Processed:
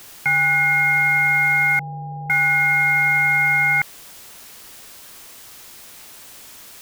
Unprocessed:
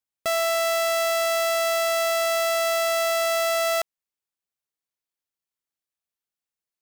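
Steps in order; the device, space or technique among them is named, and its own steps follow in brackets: scrambled radio voice (BPF 350–2800 Hz; inverted band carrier 2800 Hz; white noise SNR 22 dB); 1.79–2.3 steep low-pass 770 Hz 72 dB/oct; gain +7 dB

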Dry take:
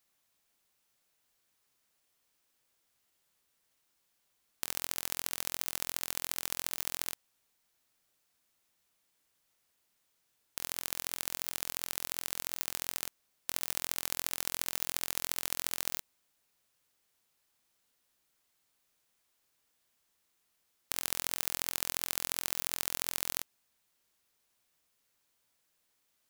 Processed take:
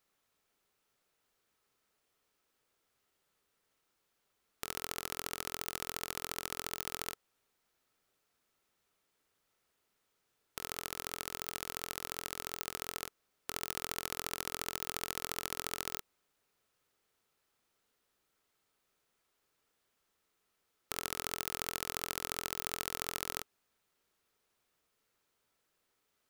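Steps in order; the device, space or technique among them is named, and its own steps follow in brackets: inside a helmet (high shelf 3800 Hz -7.5 dB; small resonant body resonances 420/1300 Hz, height 6 dB, ringing for 25 ms); gain +1 dB

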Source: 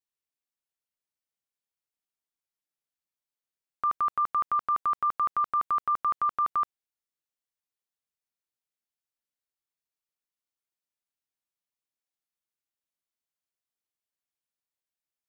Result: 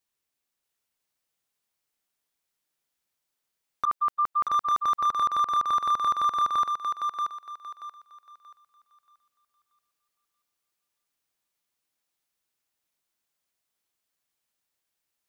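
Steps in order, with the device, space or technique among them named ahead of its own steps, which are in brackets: 3.85–4.49 gate -25 dBFS, range -48 dB; clipper into limiter (hard clip -23 dBFS, distortion -22 dB; limiter -28 dBFS, peak gain reduction 5 dB); thinning echo 0.631 s, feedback 30%, high-pass 450 Hz, level -4 dB; gain +8.5 dB

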